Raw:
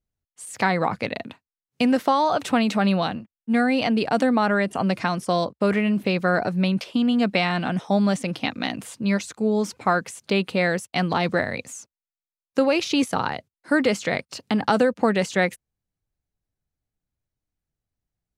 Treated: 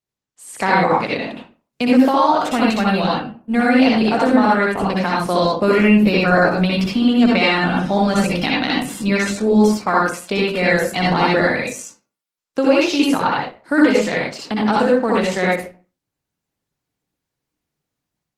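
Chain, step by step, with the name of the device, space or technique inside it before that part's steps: far-field microphone of a smart speaker (reverb RT60 0.40 s, pre-delay 58 ms, DRR -4 dB; HPF 140 Hz 12 dB/oct; AGC gain up to 7.5 dB; gain -1 dB; Opus 16 kbps 48000 Hz)

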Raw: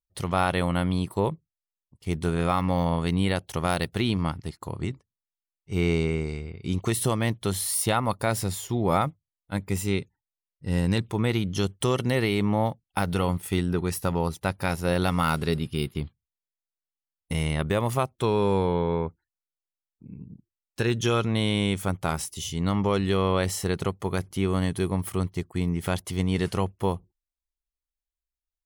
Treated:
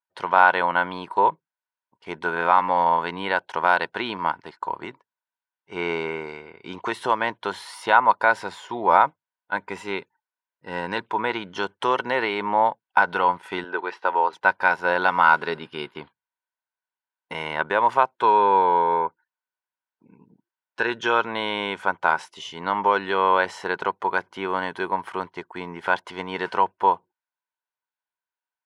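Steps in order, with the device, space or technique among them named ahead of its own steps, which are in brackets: tin-can telephone (BPF 480–2900 Hz; small resonant body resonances 960/1500 Hz, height 14 dB, ringing for 25 ms); 13.64–14.33 Chebyshev band-pass 380–3700 Hz, order 2; gain +4 dB

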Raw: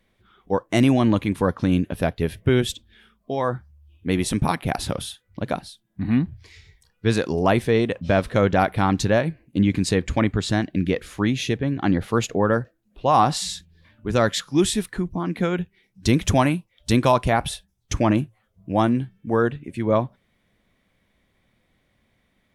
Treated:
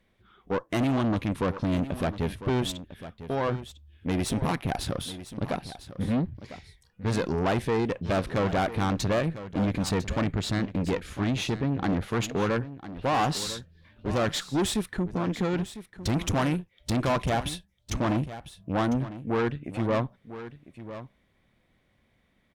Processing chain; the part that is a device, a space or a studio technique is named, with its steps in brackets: low shelf 84 Hz +6 dB; tube preamp driven hard (tube stage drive 22 dB, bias 0.55; low shelf 82 Hz -5.5 dB; high shelf 5100 Hz -5 dB); echo 1.001 s -13.5 dB; gain +1 dB

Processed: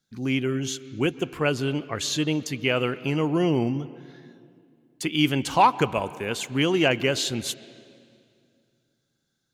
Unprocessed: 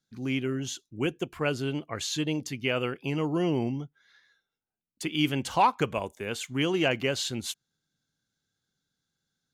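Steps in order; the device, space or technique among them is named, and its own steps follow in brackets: filtered reverb send (on a send: HPF 150 Hz + LPF 3900 Hz 12 dB/oct + reverb RT60 2.3 s, pre-delay 0.115 s, DRR 17 dB); on the sum: gain +4.5 dB

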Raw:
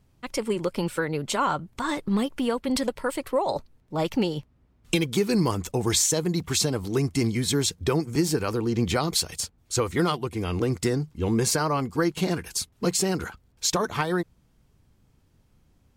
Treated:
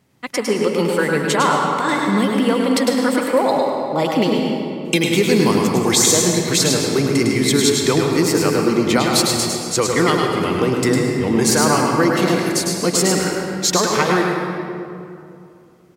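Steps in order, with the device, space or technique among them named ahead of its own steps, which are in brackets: PA in a hall (HPF 170 Hz 12 dB/oct; bell 2000 Hz +5.5 dB 0.28 oct; echo 0.104 s -5 dB; reverb RT60 2.6 s, pre-delay 0.103 s, DRR 2 dB); gain +6.5 dB

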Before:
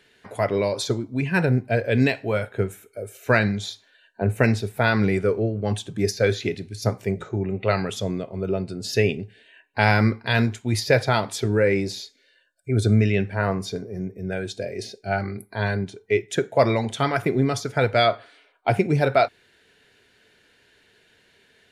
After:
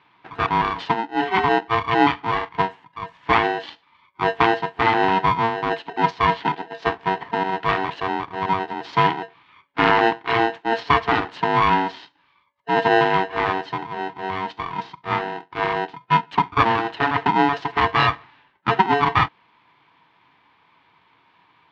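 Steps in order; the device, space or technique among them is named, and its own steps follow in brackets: 17.62–18.08 high shelf 5300 Hz +12 dB; ring modulator pedal into a guitar cabinet (polarity switched at an audio rate 570 Hz; speaker cabinet 93–3500 Hz, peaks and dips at 290 Hz +7 dB, 930 Hz +10 dB, 1700 Hz +5 dB); gain -1.5 dB

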